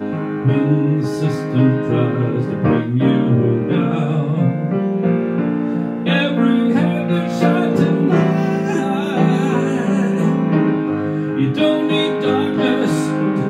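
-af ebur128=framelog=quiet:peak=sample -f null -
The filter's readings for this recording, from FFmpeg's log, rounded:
Integrated loudness:
  I:         -17.0 LUFS
  Threshold: -26.9 LUFS
Loudness range:
  LRA:         1.2 LU
  Threshold: -36.9 LUFS
  LRA low:   -17.4 LUFS
  LRA high:  -16.2 LUFS
Sample peak:
  Peak:       -1.6 dBFS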